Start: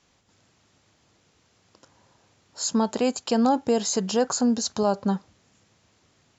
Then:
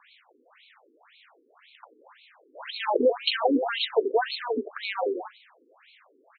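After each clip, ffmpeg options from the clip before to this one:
-filter_complex "[0:a]asplit=2[s0][s1];[s1]asplit=4[s2][s3][s4][s5];[s2]adelay=85,afreqshift=-45,volume=0.282[s6];[s3]adelay=170,afreqshift=-90,volume=0.112[s7];[s4]adelay=255,afreqshift=-135,volume=0.0452[s8];[s5]adelay=340,afreqshift=-180,volume=0.018[s9];[s6][s7][s8][s9]amix=inputs=4:normalize=0[s10];[s0][s10]amix=inputs=2:normalize=0,asplit=2[s11][s12];[s12]highpass=f=720:p=1,volume=7.94,asoftclip=type=tanh:threshold=0.335[s13];[s11][s13]amix=inputs=2:normalize=0,lowpass=f=6100:p=1,volume=0.501,afftfilt=real='re*between(b*sr/1024,330*pow(3100/330,0.5+0.5*sin(2*PI*1.9*pts/sr))/1.41,330*pow(3100/330,0.5+0.5*sin(2*PI*1.9*pts/sr))*1.41)':imag='im*between(b*sr/1024,330*pow(3100/330,0.5+0.5*sin(2*PI*1.9*pts/sr))/1.41,330*pow(3100/330,0.5+0.5*sin(2*PI*1.9*pts/sr))*1.41)':win_size=1024:overlap=0.75,volume=1.5"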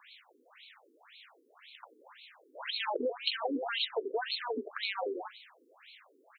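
-af "highpass=120,highshelf=f=3200:g=12,acompressor=threshold=0.0316:ratio=2.5,volume=0.668"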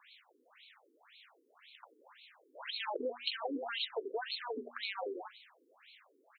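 -af "bandreject=f=60:t=h:w=6,bandreject=f=120:t=h:w=6,bandreject=f=180:t=h:w=6,bandreject=f=240:t=h:w=6,volume=0.596"

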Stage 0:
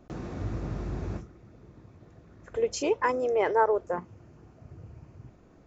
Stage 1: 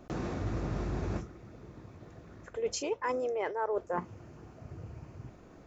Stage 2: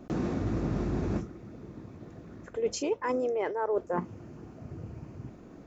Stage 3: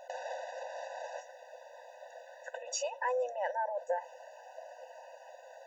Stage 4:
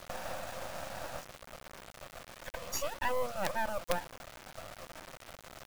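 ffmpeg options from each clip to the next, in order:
-af "lowshelf=f=330:g=-4,areverse,acompressor=threshold=0.02:ratio=12,areverse,volume=1.78"
-af "equalizer=f=240:t=o:w=1.6:g=8"
-af "alimiter=level_in=1.88:limit=0.0631:level=0:latency=1:release=47,volume=0.531,afftfilt=real='re*eq(mod(floor(b*sr/1024/500),2),1)':imag='im*eq(mod(floor(b*sr/1024/500),2),1)':win_size=1024:overlap=0.75,volume=2.66"
-af "acrusher=bits=5:dc=4:mix=0:aa=0.000001,volume=1.58"

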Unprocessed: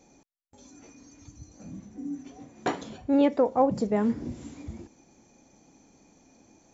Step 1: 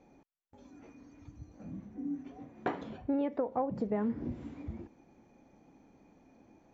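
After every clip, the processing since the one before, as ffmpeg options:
-af "lowpass=2300,acompressor=threshold=0.0501:ratio=12,volume=0.794"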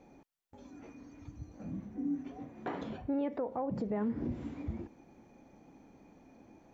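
-af "alimiter=level_in=1.88:limit=0.0631:level=0:latency=1:release=79,volume=0.531,volume=1.41"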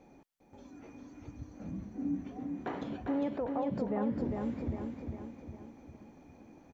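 -af "aecho=1:1:402|804|1206|1608|2010|2412:0.596|0.298|0.149|0.0745|0.0372|0.0186"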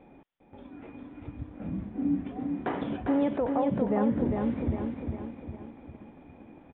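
-filter_complex "[0:a]asplit=2[s0][s1];[s1]aeval=exprs='sgn(val(0))*max(abs(val(0))-0.00224,0)':c=same,volume=0.316[s2];[s0][s2]amix=inputs=2:normalize=0,aresample=8000,aresample=44100,volume=1.68"

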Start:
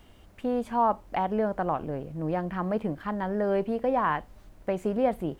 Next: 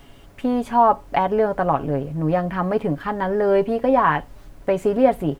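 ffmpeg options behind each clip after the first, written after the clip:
-af "aecho=1:1:7.2:0.51,volume=2.37"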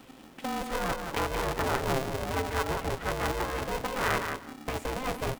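-af "afftfilt=real='re*lt(hypot(re,im),0.708)':imag='im*lt(hypot(re,im),0.708)':win_size=1024:overlap=0.75,aecho=1:1:179|358|537:0.473|0.0852|0.0153,aeval=exprs='val(0)*sgn(sin(2*PI*260*n/s))':c=same,volume=0.501"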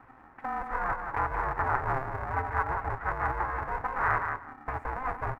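-af "firequalizer=gain_entry='entry(120,0);entry(170,-12);entry(320,-8);entry(550,-8);entry(810,4);entry(1200,4);entry(1800,2);entry(3100,-25);entry(6900,-27)':delay=0.05:min_phase=1"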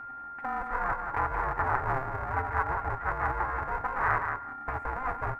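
-af "aeval=exprs='val(0)+0.0112*sin(2*PI*1400*n/s)':c=same"

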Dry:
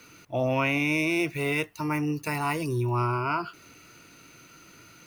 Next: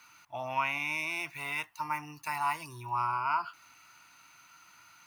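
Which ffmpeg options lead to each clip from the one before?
-af "lowshelf=f=640:t=q:w=3:g=-11.5,volume=0.501"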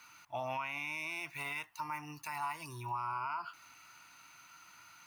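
-af "alimiter=level_in=1.78:limit=0.0631:level=0:latency=1:release=177,volume=0.562"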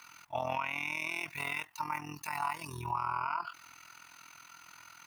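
-af "tremolo=f=42:d=0.788,volume=2.24"

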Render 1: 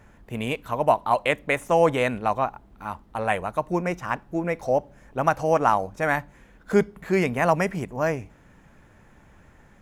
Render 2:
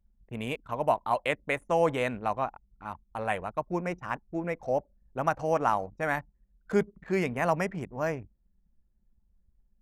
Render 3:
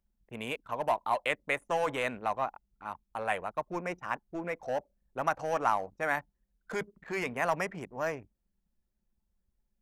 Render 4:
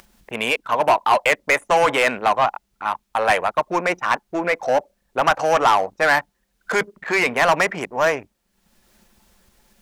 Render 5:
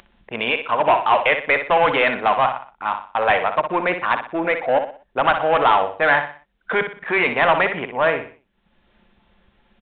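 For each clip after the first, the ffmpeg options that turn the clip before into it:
-af "anlmdn=1,volume=0.501"
-filter_complex "[0:a]lowshelf=f=210:g=-12,acrossover=split=710[s0][s1];[s0]volume=47.3,asoftclip=hard,volume=0.0211[s2];[s2][s1]amix=inputs=2:normalize=0"
-filter_complex "[0:a]acompressor=mode=upward:threshold=0.00355:ratio=2.5,asplit=2[s0][s1];[s1]highpass=f=720:p=1,volume=8.91,asoftclip=type=tanh:threshold=0.237[s2];[s0][s2]amix=inputs=2:normalize=0,lowpass=f=7800:p=1,volume=0.501,volume=2.11"
-filter_complex "[0:a]asplit=2[s0][s1];[s1]aecho=0:1:61|122|183|244:0.376|0.135|0.0487|0.0175[s2];[s0][s2]amix=inputs=2:normalize=0,aresample=8000,aresample=44100"

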